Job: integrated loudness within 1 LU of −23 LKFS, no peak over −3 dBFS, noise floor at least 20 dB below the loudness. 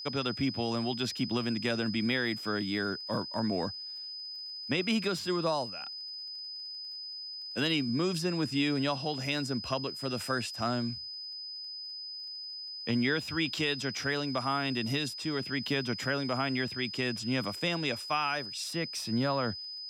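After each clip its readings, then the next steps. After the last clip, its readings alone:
crackle rate 31 per second; interfering tone 5,000 Hz; level of the tone −39 dBFS; integrated loudness −32.0 LKFS; sample peak −16.5 dBFS; target loudness −23.0 LKFS
→ click removal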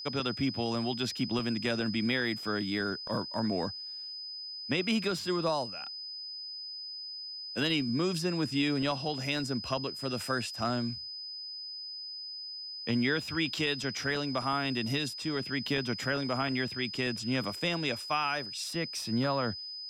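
crackle rate 0 per second; interfering tone 5,000 Hz; level of the tone −39 dBFS
→ notch filter 5,000 Hz, Q 30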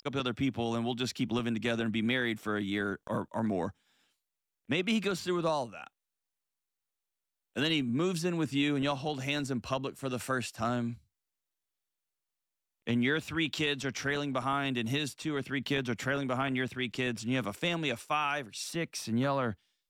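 interfering tone none found; integrated loudness −32.5 LKFS; sample peak −16.5 dBFS; target loudness −23.0 LKFS
→ level +9.5 dB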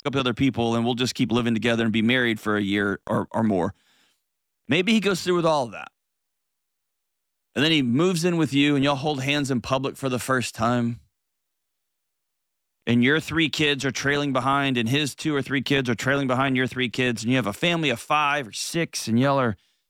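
integrated loudness −23.0 LKFS; sample peak −7.0 dBFS; background noise floor −78 dBFS

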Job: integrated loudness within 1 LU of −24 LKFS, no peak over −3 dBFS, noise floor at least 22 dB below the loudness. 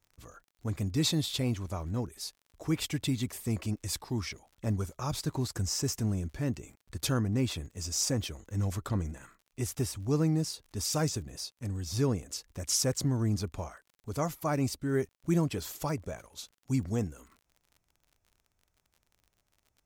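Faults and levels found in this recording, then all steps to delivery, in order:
crackle rate 38 per second; integrated loudness −32.5 LKFS; sample peak −16.5 dBFS; target loudness −24.0 LKFS
→ click removal
level +8.5 dB

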